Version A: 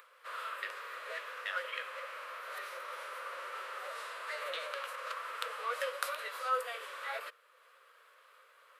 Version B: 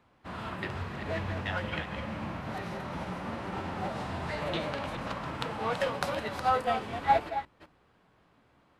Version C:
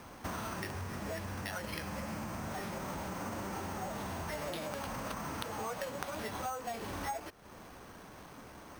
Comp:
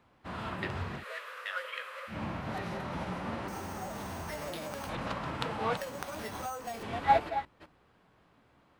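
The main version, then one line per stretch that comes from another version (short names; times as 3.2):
B
1–2.12 from A, crossfade 0.10 s
3.48–4.89 from C
5.77–6.83 from C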